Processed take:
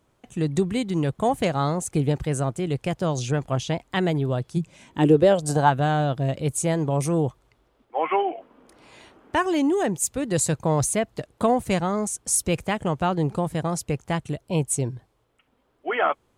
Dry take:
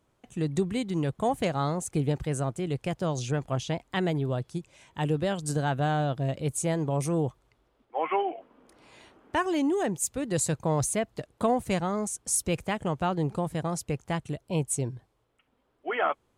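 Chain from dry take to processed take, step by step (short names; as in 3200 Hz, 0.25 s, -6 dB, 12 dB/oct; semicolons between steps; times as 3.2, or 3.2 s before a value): 4.56–5.69 bell 140 Hz -> 1000 Hz +14.5 dB 0.69 oct; gain +4.5 dB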